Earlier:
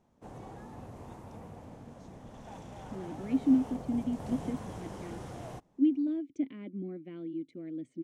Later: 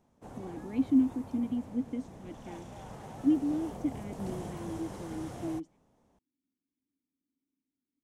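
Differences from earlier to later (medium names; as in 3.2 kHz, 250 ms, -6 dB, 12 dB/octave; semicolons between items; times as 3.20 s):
speech: entry -2.55 s; background: add treble shelf 8.6 kHz +7 dB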